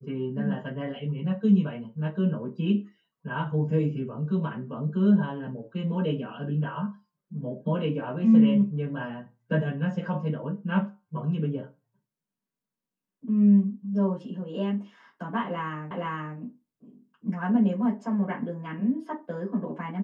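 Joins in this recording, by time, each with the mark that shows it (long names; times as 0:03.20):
0:15.91: the same again, the last 0.47 s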